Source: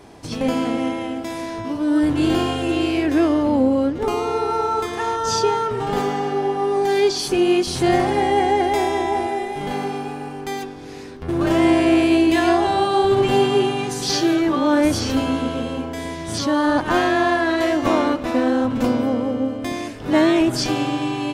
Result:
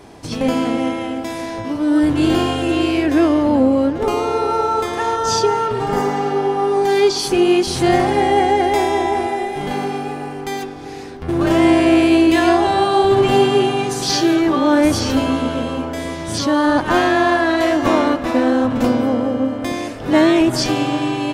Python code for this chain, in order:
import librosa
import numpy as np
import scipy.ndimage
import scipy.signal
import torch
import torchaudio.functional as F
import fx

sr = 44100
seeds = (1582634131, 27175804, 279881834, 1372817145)

p1 = fx.spec_repair(x, sr, seeds[0], start_s=5.49, length_s=0.78, low_hz=2300.0, high_hz=4600.0, source='after')
p2 = p1 + fx.echo_wet_bandpass(p1, sr, ms=386, feedback_pct=66, hz=910.0, wet_db=-14.0, dry=0)
y = F.gain(torch.from_numpy(p2), 3.0).numpy()